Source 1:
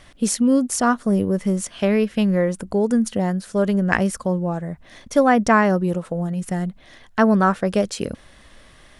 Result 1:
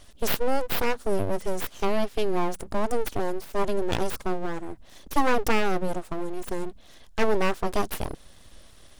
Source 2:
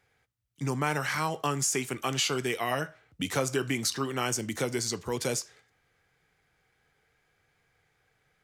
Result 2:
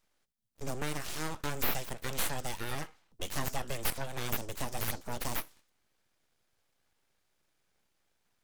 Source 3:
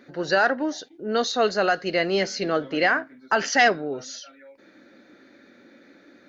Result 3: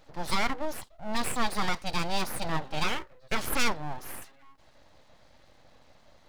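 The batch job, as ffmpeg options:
-af "equalizer=f=125:t=o:w=1:g=-6,equalizer=f=250:t=o:w=1:g=-3,equalizer=f=500:t=o:w=1:g=-3,equalizer=f=1000:t=o:w=1:g=-5,equalizer=f=2000:t=o:w=1:g=-11,aeval=exprs='abs(val(0))':c=same,volume=1.19"

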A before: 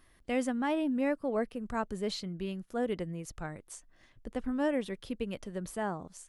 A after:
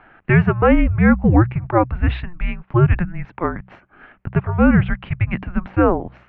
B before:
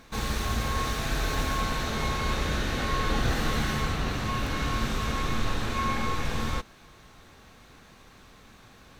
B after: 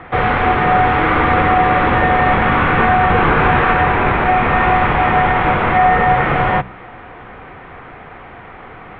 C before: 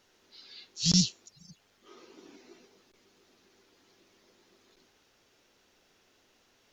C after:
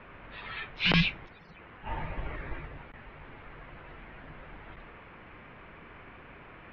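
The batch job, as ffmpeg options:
-af "highpass=f=340:t=q:w=0.5412,highpass=f=340:t=q:w=1.307,lowpass=f=2700:t=q:w=0.5176,lowpass=f=2700:t=q:w=0.7071,lowpass=f=2700:t=q:w=1.932,afreqshift=-350,bandreject=f=62.88:t=h:w=4,bandreject=f=125.76:t=h:w=4,bandreject=f=188.64:t=h:w=4,alimiter=level_in=15:limit=0.891:release=50:level=0:latency=1,volume=0.75"

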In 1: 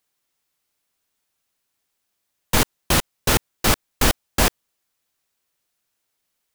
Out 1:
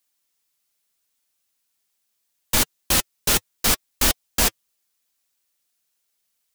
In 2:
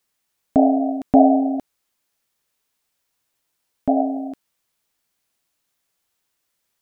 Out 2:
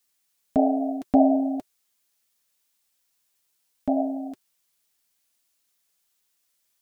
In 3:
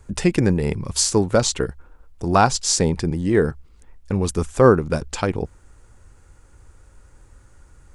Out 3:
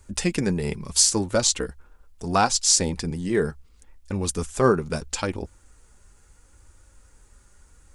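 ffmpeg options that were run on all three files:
-af "flanger=delay=3.3:depth=1.7:regen=-45:speed=0.74:shape=sinusoidal,highshelf=f=2700:g=9.5,volume=0.794"

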